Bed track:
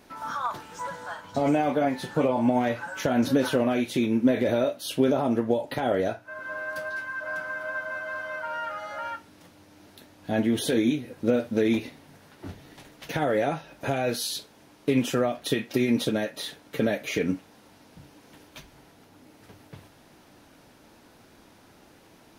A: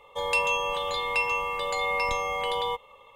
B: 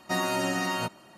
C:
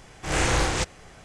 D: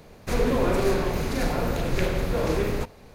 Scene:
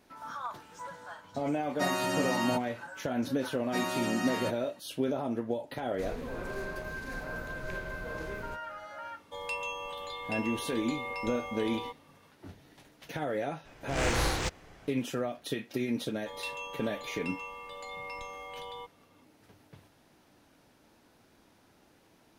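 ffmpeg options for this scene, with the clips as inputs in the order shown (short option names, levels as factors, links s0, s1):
-filter_complex "[2:a]asplit=2[s0][s1];[1:a]asplit=2[s2][s3];[0:a]volume=0.376[s4];[3:a]adynamicsmooth=sensitivity=5.5:basefreq=5400[s5];[s0]atrim=end=1.17,asetpts=PTS-STARTPTS,volume=0.708,afade=t=in:d=0.004:c=hsin,afade=t=out:st=1.166:d=0.004:c=hsin,adelay=1700[s6];[s1]atrim=end=1.17,asetpts=PTS-STARTPTS,volume=0.531,afade=t=in:d=0.004:c=hsin,afade=t=out:st=1.166:d=0.004:c=hsin,adelay=3630[s7];[4:a]atrim=end=3.14,asetpts=PTS-STARTPTS,volume=0.15,afade=t=in:d=0.004:c=hsin,afade=t=out:st=3.136:d=0.004:c=hsin,adelay=5710[s8];[s2]atrim=end=3.15,asetpts=PTS-STARTPTS,volume=0.282,afade=t=in:d=0.004:c=hsin,afade=t=out:st=3.146:d=0.004:c=hsin,adelay=9160[s9];[s5]atrim=end=1.24,asetpts=PTS-STARTPTS,volume=0.501,afade=t=in:d=0.004:c=hsin,afade=t=out:st=1.236:d=0.004:c=hsin,adelay=13650[s10];[s3]atrim=end=3.15,asetpts=PTS-STARTPTS,volume=0.188,afade=t=in:d=0.004:c=hsin,afade=t=out:st=3.146:d=0.004:c=hsin,adelay=16100[s11];[s4][s6][s7][s8][s9][s10][s11]amix=inputs=7:normalize=0"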